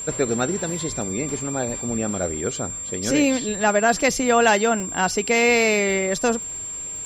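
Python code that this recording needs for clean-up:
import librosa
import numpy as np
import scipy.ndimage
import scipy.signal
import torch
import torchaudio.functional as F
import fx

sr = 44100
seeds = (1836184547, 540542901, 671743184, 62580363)

y = fx.fix_declick_ar(x, sr, threshold=6.5)
y = fx.notch(y, sr, hz=7400.0, q=30.0)
y = fx.fix_interpolate(y, sr, at_s=(1.02, 1.41, 2.56, 4.01, 4.8), length_ms=1.5)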